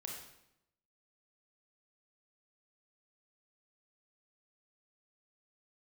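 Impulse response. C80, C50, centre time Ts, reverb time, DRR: 5.5 dB, 2.5 dB, 48 ms, 0.80 s, -1.0 dB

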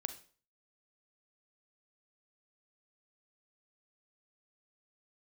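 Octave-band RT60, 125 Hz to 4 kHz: 0.50, 0.45, 0.45, 0.40, 0.40, 0.40 s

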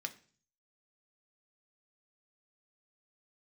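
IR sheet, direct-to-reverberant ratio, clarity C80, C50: 5.0 dB, 20.5 dB, 16.5 dB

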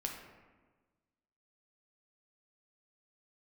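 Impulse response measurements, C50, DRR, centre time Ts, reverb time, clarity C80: 4.0 dB, 0.5 dB, 43 ms, 1.4 s, 6.5 dB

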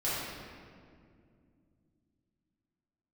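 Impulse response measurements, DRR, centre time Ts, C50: -11.0 dB, 0.129 s, -3.0 dB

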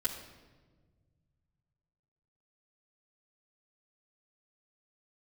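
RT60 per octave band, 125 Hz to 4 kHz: 3.4, 2.2, 1.6, 1.2, 1.1, 0.95 s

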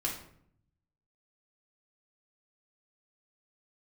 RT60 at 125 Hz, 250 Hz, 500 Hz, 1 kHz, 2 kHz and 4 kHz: 1.3, 0.95, 0.70, 0.60, 0.55, 0.40 s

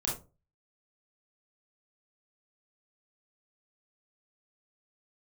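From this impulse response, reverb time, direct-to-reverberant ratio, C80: 0.30 s, -4.5 dB, 12.5 dB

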